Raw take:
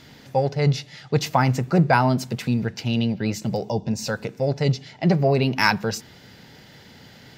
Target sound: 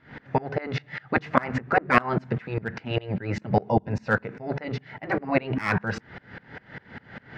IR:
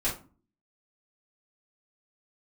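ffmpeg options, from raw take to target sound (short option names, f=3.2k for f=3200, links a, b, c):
-filter_complex "[0:a]lowpass=f=1.7k:t=q:w=2.3,afftfilt=real='re*lt(hypot(re,im),0.562)':imag='im*lt(hypot(re,im),0.562)':win_size=1024:overlap=0.75,asplit=2[a][b];[b]aeval=exprs='0.168*(abs(mod(val(0)/0.168+3,4)-2)-1)':c=same,volume=-7.5dB[c];[a][c]amix=inputs=2:normalize=0,aeval=exprs='val(0)*pow(10,-27*if(lt(mod(-5*n/s,1),2*abs(-5)/1000),1-mod(-5*n/s,1)/(2*abs(-5)/1000),(mod(-5*n/s,1)-2*abs(-5)/1000)/(1-2*abs(-5)/1000))/20)':c=same,volume=7dB"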